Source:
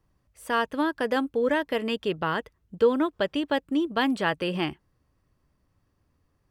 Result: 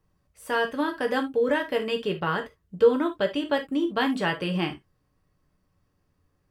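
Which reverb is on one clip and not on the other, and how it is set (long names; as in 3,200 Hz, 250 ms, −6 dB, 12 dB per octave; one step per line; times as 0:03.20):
reverb whose tail is shaped and stops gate 100 ms falling, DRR 3 dB
level −1.5 dB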